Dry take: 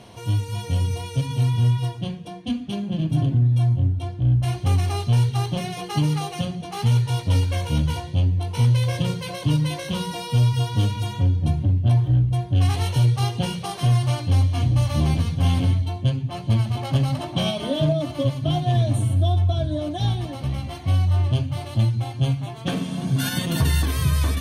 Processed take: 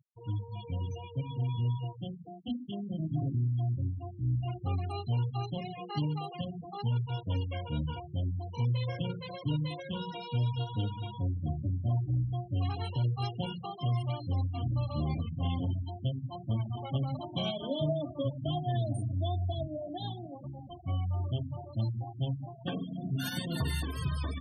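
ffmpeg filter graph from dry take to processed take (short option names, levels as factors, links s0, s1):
-filter_complex "[0:a]asettb=1/sr,asplit=3[s0][s1][s2];[s0]atrim=end=19.674[s3];[s1]atrim=start=19.67:end=20.71,asetpts=PTS-STARTPTS,afade=t=in:d=0.004:c=qsin,afade=t=out:st=1.036:d=0.004:c=qsin,highpass=150,lowpass=5900,bandreject=f=50:t=h:w=6,bandreject=f=100:t=h:w=6,bandreject=f=150:t=h:w=6,bandreject=f=200:t=h:w=6,bandreject=f=250:t=h:w=6,bandreject=f=300:t=h:w=6[s4];[s2]atrim=start=20.706[s5];[s3][s4]acrossfade=d=0.004:c1=hsin:c2=qsin[s6];[s6][s5]acrossfade=d=0.004:c1=qsin:c2=hsin,afftfilt=real='re*gte(hypot(re,im),0.0501)':imag='im*gte(hypot(re,im),0.0501)':win_size=1024:overlap=0.75,lowshelf=f=100:g=-8.5,volume=0.376"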